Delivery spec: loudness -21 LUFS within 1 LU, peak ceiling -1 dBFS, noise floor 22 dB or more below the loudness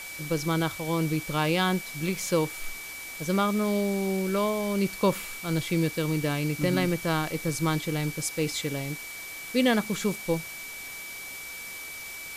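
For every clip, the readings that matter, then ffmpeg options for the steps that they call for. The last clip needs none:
steady tone 2300 Hz; tone level -39 dBFS; noise floor -40 dBFS; noise floor target -51 dBFS; loudness -28.5 LUFS; peak -10.0 dBFS; loudness target -21.0 LUFS
-> -af "bandreject=f=2.3k:w=30"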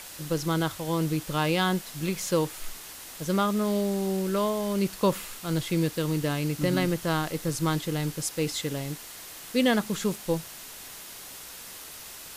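steady tone none; noise floor -43 dBFS; noise floor target -50 dBFS
-> -af "afftdn=nr=7:nf=-43"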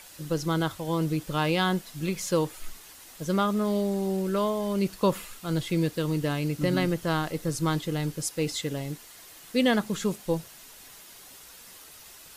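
noise floor -49 dBFS; noise floor target -50 dBFS
-> -af "afftdn=nr=6:nf=-49"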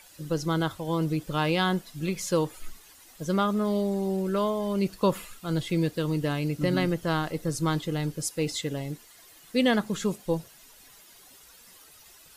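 noise floor -54 dBFS; loudness -28.0 LUFS; peak -10.5 dBFS; loudness target -21.0 LUFS
-> -af "volume=7dB"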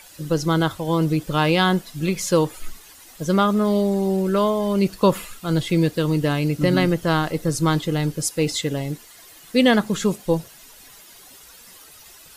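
loudness -21.0 LUFS; peak -3.5 dBFS; noise floor -46 dBFS

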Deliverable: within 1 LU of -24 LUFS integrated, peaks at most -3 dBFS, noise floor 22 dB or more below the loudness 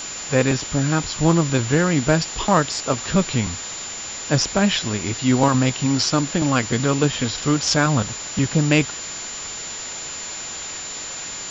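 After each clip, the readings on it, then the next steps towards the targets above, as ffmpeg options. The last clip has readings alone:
steady tone 7100 Hz; tone level -31 dBFS; noise floor -32 dBFS; noise floor target -43 dBFS; loudness -21.0 LUFS; peak -3.5 dBFS; loudness target -24.0 LUFS
-> -af "bandreject=f=7.1k:w=30"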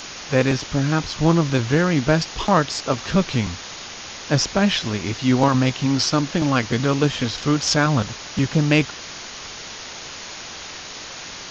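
steady tone none; noise floor -36 dBFS; noise floor target -43 dBFS
-> -af "afftdn=nr=7:nf=-36"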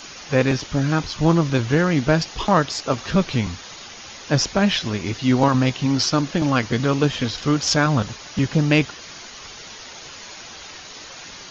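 noise floor -39 dBFS; noise floor target -43 dBFS
-> -af "afftdn=nr=6:nf=-39"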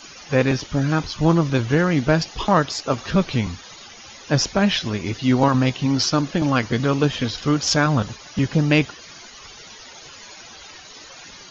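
noise floor -42 dBFS; noise floor target -43 dBFS
-> -af "afftdn=nr=6:nf=-42"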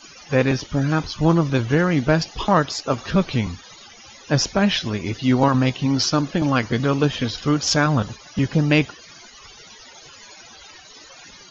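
noise floor -45 dBFS; loudness -20.5 LUFS; peak -4.0 dBFS; loudness target -24.0 LUFS
-> -af "volume=-3.5dB"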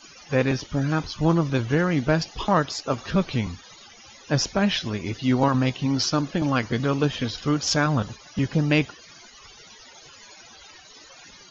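loudness -24.0 LUFS; peak -7.5 dBFS; noise floor -48 dBFS

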